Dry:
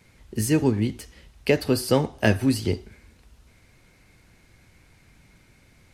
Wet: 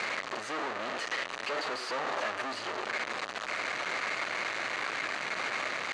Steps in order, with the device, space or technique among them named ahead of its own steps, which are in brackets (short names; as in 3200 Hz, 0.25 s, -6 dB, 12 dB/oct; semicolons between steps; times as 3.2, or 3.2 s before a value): home computer beeper (infinite clipping; speaker cabinet 540–5500 Hz, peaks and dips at 610 Hz +4 dB, 1200 Hz +7 dB, 1800 Hz +4 dB, 3400 Hz -4 dB, 5300 Hz -9 dB); gain -3.5 dB